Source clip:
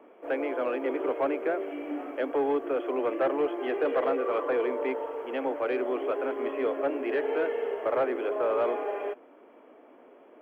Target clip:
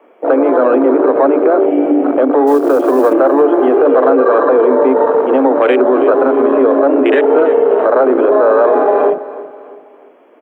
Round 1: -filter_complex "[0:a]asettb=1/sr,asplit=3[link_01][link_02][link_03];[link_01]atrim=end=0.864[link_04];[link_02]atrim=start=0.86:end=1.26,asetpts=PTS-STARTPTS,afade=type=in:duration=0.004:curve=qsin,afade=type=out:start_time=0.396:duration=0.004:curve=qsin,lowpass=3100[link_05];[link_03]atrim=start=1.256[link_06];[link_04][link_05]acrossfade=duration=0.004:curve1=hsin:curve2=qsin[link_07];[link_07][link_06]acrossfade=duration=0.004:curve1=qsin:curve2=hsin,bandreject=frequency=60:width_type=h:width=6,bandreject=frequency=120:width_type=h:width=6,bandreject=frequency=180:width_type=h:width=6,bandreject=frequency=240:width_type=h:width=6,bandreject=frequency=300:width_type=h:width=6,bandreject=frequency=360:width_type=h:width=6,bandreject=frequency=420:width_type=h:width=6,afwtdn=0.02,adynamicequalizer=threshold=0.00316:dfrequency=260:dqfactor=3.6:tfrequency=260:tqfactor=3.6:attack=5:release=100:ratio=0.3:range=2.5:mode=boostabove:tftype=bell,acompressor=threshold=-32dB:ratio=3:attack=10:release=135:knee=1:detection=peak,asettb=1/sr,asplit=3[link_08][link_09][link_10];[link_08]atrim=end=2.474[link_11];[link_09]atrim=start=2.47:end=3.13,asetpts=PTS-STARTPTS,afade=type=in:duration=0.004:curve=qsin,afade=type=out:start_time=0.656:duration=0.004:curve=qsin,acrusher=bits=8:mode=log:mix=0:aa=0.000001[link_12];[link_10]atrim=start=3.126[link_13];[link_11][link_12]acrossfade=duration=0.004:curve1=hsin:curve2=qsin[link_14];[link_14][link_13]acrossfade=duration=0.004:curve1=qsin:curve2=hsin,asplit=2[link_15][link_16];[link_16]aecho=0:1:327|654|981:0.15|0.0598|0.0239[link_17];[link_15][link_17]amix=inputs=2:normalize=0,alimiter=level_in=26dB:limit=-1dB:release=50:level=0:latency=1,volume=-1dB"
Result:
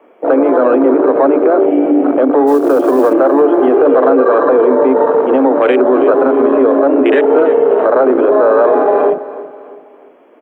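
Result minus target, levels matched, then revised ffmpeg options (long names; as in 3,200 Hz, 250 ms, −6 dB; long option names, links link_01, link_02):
125 Hz band +3.0 dB
-filter_complex "[0:a]asettb=1/sr,asplit=3[link_01][link_02][link_03];[link_01]atrim=end=0.864[link_04];[link_02]atrim=start=0.86:end=1.26,asetpts=PTS-STARTPTS,afade=type=in:duration=0.004:curve=qsin,afade=type=out:start_time=0.396:duration=0.004:curve=qsin,lowpass=3100[link_05];[link_03]atrim=start=1.256[link_06];[link_04][link_05]acrossfade=duration=0.004:curve1=hsin:curve2=qsin[link_07];[link_07][link_06]acrossfade=duration=0.004:curve1=qsin:curve2=hsin,bandreject=frequency=60:width_type=h:width=6,bandreject=frequency=120:width_type=h:width=6,bandreject=frequency=180:width_type=h:width=6,bandreject=frequency=240:width_type=h:width=6,bandreject=frequency=300:width_type=h:width=6,bandreject=frequency=360:width_type=h:width=6,bandreject=frequency=420:width_type=h:width=6,afwtdn=0.02,adynamicequalizer=threshold=0.00316:dfrequency=260:dqfactor=3.6:tfrequency=260:tqfactor=3.6:attack=5:release=100:ratio=0.3:range=2.5:mode=boostabove:tftype=bell,acompressor=threshold=-32dB:ratio=3:attack=10:release=135:knee=1:detection=peak,lowshelf=frequency=120:gain=-11,asettb=1/sr,asplit=3[link_08][link_09][link_10];[link_08]atrim=end=2.474[link_11];[link_09]atrim=start=2.47:end=3.13,asetpts=PTS-STARTPTS,afade=type=in:duration=0.004:curve=qsin,afade=type=out:start_time=0.656:duration=0.004:curve=qsin,acrusher=bits=8:mode=log:mix=0:aa=0.000001[link_12];[link_10]atrim=start=3.126[link_13];[link_11][link_12]acrossfade=duration=0.004:curve1=hsin:curve2=qsin[link_14];[link_14][link_13]acrossfade=duration=0.004:curve1=qsin:curve2=hsin,asplit=2[link_15][link_16];[link_16]aecho=0:1:327|654|981:0.15|0.0598|0.0239[link_17];[link_15][link_17]amix=inputs=2:normalize=0,alimiter=level_in=26dB:limit=-1dB:release=50:level=0:latency=1,volume=-1dB"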